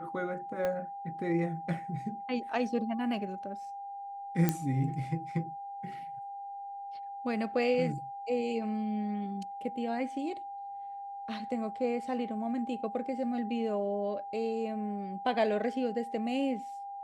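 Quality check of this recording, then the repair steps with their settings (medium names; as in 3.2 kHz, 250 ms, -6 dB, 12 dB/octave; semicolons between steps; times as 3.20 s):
whine 800 Hz -39 dBFS
0.65 s: pop -20 dBFS
4.49 s: pop -13 dBFS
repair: de-click; band-stop 800 Hz, Q 30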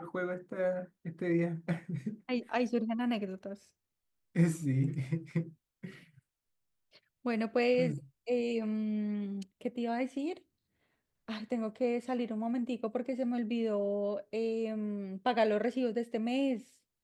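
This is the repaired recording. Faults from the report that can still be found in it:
0.65 s: pop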